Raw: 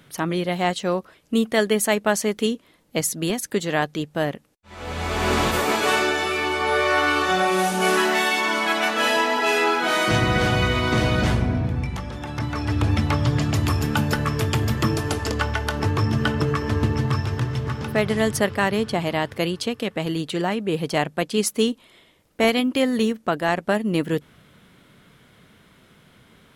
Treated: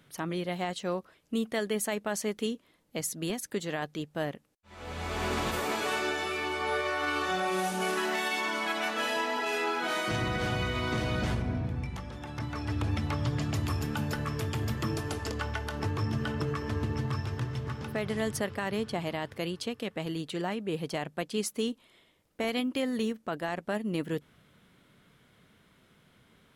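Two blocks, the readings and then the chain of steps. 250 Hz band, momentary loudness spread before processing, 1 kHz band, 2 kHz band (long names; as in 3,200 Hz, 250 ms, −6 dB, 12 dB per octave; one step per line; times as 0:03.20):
−9.5 dB, 7 LU, −10.5 dB, −10.5 dB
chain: brickwall limiter −12 dBFS, peak gain reduction 5.5 dB
level −9 dB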